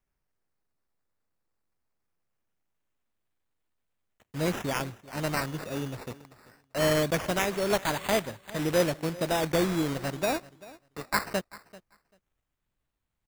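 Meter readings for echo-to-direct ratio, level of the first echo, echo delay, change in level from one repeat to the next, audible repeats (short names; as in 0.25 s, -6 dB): -20.0 dB, -20.0 dB, 0.39 s, no steady repeat, 1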